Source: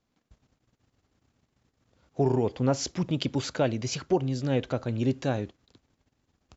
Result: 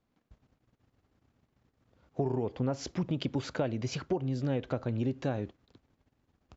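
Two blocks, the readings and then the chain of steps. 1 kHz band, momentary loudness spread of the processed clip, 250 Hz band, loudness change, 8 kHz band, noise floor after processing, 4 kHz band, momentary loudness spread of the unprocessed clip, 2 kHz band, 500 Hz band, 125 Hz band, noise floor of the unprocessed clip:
−6.5 dB, 4 LU, −4.5 dB, −5.5 dB, can't be measured, −79 dBFS, −7.5 dB, 6 LU, −5.0 dB, −6.0 dB, −4.0 dB, −78 dBFS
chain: low-pass filter 2,300 Hz 6 dB per octave
downward compressor 6 to 1, threshold −27 dBFS, peak gain reduction 8.5 dB

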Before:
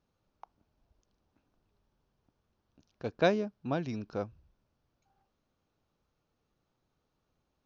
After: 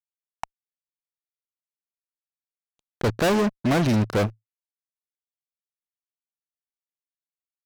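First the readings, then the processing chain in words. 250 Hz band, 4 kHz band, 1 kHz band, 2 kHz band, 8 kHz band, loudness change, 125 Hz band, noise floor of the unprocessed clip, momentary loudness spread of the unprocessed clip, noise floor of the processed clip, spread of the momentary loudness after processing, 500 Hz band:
+12.5 dB, +11.0 dB, +9.5 dB, +9.5 dB, can't be measured, +10.5 dB, +15.0 dB, −81 dBFS, 13 LU, below −85 dBFS, 20 LU, +7.5 dB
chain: fuzz pedal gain 42 dB, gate −50 dBFS
dynamic equaliser 110 Hz, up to +4 dB, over −38 dBFS, Q 6.7
level −5 dB

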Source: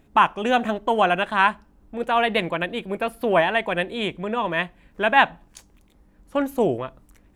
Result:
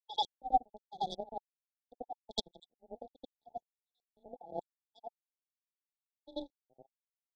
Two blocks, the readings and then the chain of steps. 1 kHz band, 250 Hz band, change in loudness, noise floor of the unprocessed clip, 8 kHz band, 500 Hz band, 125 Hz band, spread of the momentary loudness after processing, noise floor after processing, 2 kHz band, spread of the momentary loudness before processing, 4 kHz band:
−16.5 dB, −24.5 dB, −17.5 dB, −57 dBFS, can't be measured, −24.0 dB, −26.0 dB, 20 LU, below −85 dBFS, below −40 dB, 10 LU, −13.0 dB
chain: time-frequency cells dropped at random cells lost 49%
low-pass that shuts in the quiet parts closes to 1,100 Hz, open at −20.5 dBFS
high-shelf EQ 4,500 Hz +11 dB
leveller curve on the samples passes 1
gate pattern ".x..xxx.xxx..x." 120 BPM
frequency shifter +18 Hz
power curve on the samples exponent 3
echo ahead of the sound 87 ms −15 dB
auto-filter low-pass square 1.3 Hz 800–3,600 Hz
linear-phase brick-wall band-stop 880–3,300 Hz
level −4 dB

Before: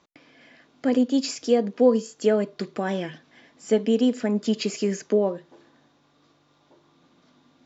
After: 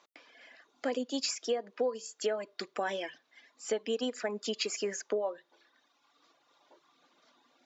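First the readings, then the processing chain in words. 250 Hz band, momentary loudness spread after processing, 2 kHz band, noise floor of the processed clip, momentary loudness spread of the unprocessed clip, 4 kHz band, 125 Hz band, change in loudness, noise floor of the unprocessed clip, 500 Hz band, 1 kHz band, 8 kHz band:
−17.5 dB, 6 LU, −3.5 dB, −74 dBFS, 9 LU, −2.5 dB, below −20 dB, −11.0 dB, −63 dBFS, −10.5 dB, −6.0 dB, can't be measured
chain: high-pass filter 520 Hz 12 dB per octave
reverb reduction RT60 1.1 s
downward compressor 6 to 1, threshold −28 dBFS, peak gain reduction 11 dB

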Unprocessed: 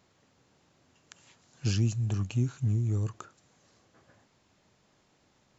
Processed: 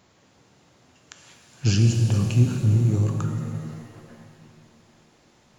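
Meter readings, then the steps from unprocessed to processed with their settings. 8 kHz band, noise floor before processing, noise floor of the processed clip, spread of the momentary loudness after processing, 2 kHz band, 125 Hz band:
can't be measured, −68 dBFS, −59 dBFS, 14 LU, +9.0 dB, +9.0 dB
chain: reverb with rising layers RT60 2.5 s, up +7 semitones, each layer −8 dB, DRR 3.5 dB
level +7 dB

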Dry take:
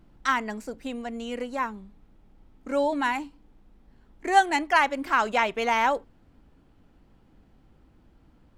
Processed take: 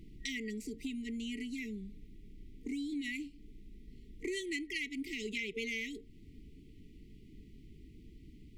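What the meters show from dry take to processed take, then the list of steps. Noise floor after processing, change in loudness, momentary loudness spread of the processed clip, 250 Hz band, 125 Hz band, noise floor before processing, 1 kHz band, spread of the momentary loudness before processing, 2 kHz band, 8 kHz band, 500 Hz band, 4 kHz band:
−56 dBFS, −14.0 dB, 20 LU, −6.0 dB, can't be measured, −60 dBFS, below −40 dB, 14 LU, −13.0 dB, −7.0 dB, −15.5 dB, −7.5 dB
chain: brick-wall band-stop 460–1,900 Hz
downward compressor 3 to 1, threshold −44 dBFS, peak gain reduction 15 dB
level +4 dB

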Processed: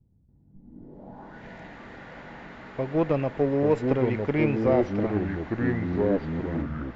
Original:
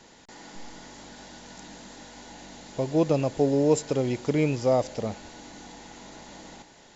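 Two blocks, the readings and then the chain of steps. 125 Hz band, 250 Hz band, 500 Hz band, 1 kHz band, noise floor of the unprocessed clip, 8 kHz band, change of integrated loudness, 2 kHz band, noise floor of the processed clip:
+2.5 dB, +2.5 dB, +0.5 dB, +1.0 dB, −53 dBFS, can't be measured, −0.5 dB, +5.5 dB, −60 dBFS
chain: low-pass filter sweep 110 Hz → 2,000 Hz, 0:00.48–0:01.44
harmonic generator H 4 −23 dB, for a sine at −9.5 dBFS
delay with pitch and tempo change per echo 114 ms, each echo −4 semitones, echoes 3
level −1.5 dB

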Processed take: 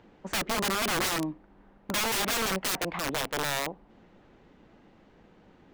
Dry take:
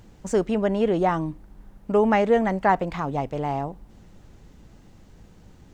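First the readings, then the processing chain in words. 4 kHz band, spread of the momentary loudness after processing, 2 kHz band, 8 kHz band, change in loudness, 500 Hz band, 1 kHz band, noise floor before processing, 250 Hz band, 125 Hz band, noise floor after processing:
+13.0 dB, 6 LU, +1.5 dB, can't be measured, −5.5 dB, −12.5 dB, −8.0 dB, −51 dBFS, −10.5 dB, −10.0 dB, −59 dBFS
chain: three-way crossover with the lows and the highs turned down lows −16 dB, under 210 Hz, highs −21 dB, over 3,600 Hz
wrap-around overflow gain 23 dB

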